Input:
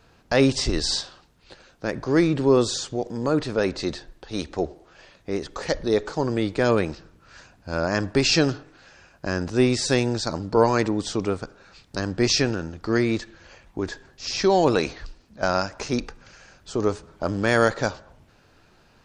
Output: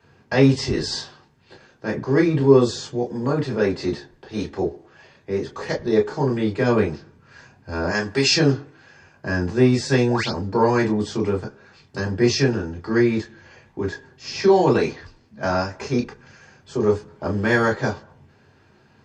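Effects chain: 7.89–8.34 s: tilt EQ +2.5 dB/octave; 10.09–10.30 s: painted sound rise 480–5800 Hz -27 dBFS; reverberation, pre-delay 3 ms, DRR -3 dB; trim -11.5 dB

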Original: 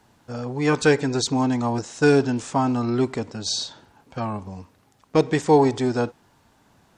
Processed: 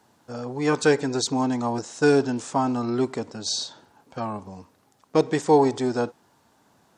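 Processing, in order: high-pass 220 Hz 6 dB/octave; peaking EQ 2.4 kHz -4.5 dB 1.3 oct

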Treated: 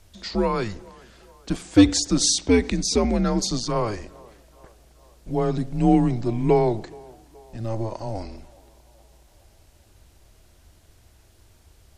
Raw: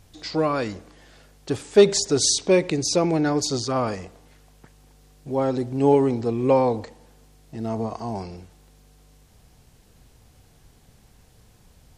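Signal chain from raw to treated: band-passed feedback delay 423 ms, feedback 61%, band-pass 880 Hz, level -23 dB; frequency shift -110 Hz

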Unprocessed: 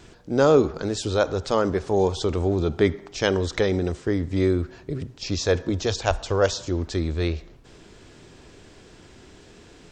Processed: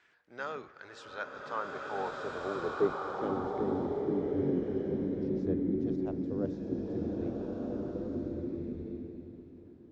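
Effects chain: octave divider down 1 oct, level 0 dB; band-pass sweep 1.8 kHz -> 260 Hz, 1.12–3.44 s; swelling reverb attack 1580 ms, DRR -2.5 dB; trim -7 dB

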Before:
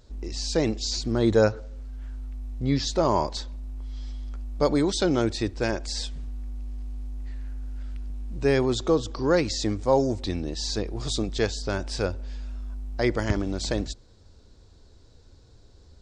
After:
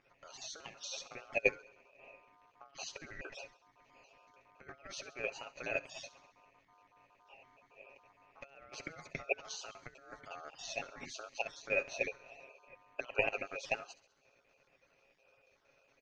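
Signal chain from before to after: random holes in the spectrogram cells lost 28%; comb 7.3 ms, depth 60%; compressor with a negative ratio -27 dBFS, ratio -0.5; two resonant band-passes 2.9 kHz, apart 1.8 oct; crackle 280 per s -64 dBFS; distance through air 450 m; on a send: feedback echo behind a high-pass 67 ms, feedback 57%, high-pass 3.7 kHz, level -14.5 dB; on the sum: ring modulator 970 Hz; trim +11.5 dB

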